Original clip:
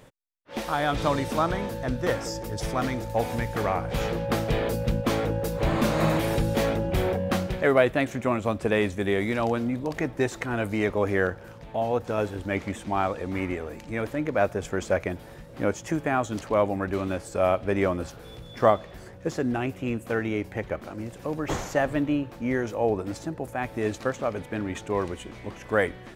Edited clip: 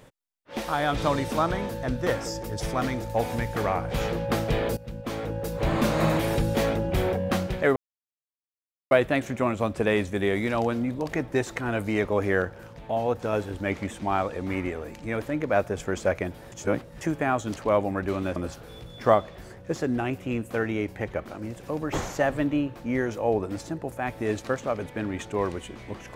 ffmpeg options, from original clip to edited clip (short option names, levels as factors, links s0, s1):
-filter_complex "[0:a]asplit=6[s0][s1][s2][s3][s4][s5];[s0]atrim=end=4.77,asetpts=PTS-STARTPTS,afade=t=out:st=4.766:d=0.004:c=hsin:silence=0.133352[s6];[s1]atrim=start=4.77:end=7.76,asetpts=PTS-STARTPTS,afade=t=in:d=0.99:silence=0.133352,afade=t=out:st=2.986:d=0.004:c=hsin,apad=pad_dur=1.15[s7];[s2]atrim=start=7.76:end=15.372,asetpts=PTS-STARTPTS,afade=t=in:d=0.004:c=hsin[s8];[s3]atrim=start=15.368:end=15.862,asetpts=PTS-STARTPTS,areverse[s9];[s4]atrim=start=15.858:end=17.212[s10];[s5]atrim=start=17.918[s11];[s6][s7][s8]concat=n=3:v=0:a=1[s12];[s12][s9]acrossfade=d=0.004:c1=hsin:c2=hsin[s13];[s13][s10]acrossfade=d=0.004:c1=hsin:c2=hsin[s14];[s14][s11]acrossfade=d=0.004:c1=hsin:c2=hsin"